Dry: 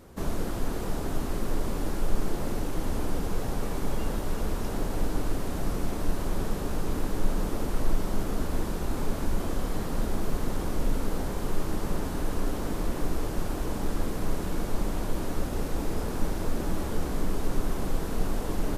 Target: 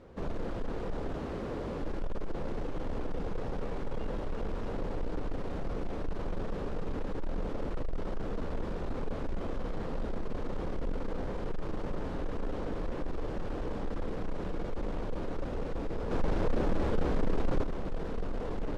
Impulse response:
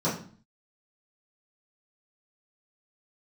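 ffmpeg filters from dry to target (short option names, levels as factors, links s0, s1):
-filter_complex "[0:a]lowpass=3400,equalizer=f=500:w=3.2:g=6.5,asettb=1/sr,asplit=3[s0][s1][s2];[s0]atrim=end=1.144[s3];[s1]atrim=start=1.14:end=1.82,asetpts=PTS-STARTPTS,afade=t=in:d=0.004:c=qsin,afade=t=out:st=0.676:d=0.004:c=qsin,highpass=50[s4];[s2]atrim=start=1.816[s5];[s3][s4]acrossfade=d=0.004:c1=hsin:c2=qsin[s6];[s6][s5]acrossfade=d=0.004:c1=qsin:c2=hsin,asoftclip=type=tanh:threshold=0.0668,asettb=1/sr,asplit=3[s7][s8][s9];[s7]atrim=end=16.114[s10];[s8]atrim=start=16.11:end=17.64,asetpts=PTS-STARTPTS,afade=t=in:d=0.004:c=qsin,afade=t=out:st=1.526:d=0.004:c=qsin,acontrast=53[s11];[s9]atrim=start=17.636[s12];[s10][s11]acrossfade=d=0.004:c1=hsin:c2=qsin[s13];[s13][s12]acrossfade=d=0.004:c1=qsin:c2=hsin,volume=0.668"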